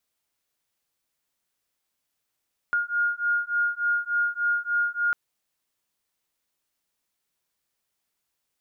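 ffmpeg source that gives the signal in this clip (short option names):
-f lavfi -i "aevalsrc='0.0531*(sin(2*PI*1420*t)+sin(2*PI*1423.4*t))':d=2.4:s=44100"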